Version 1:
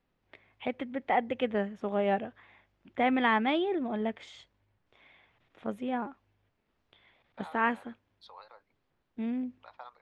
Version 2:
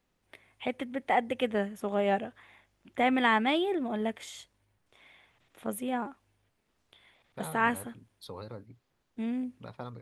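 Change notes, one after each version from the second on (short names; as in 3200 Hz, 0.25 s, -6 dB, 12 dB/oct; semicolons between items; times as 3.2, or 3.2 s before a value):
second voice: remove Chebyshev high-pass 760 Hz, order 3; master: remove air absorption 170 m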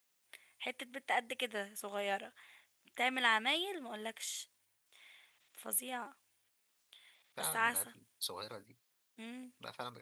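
first voice -7.5 dB; master: add tilt +4.5 dB/oct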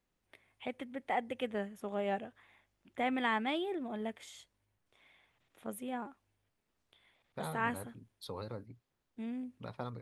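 master: add tilt -4.5 dB/oct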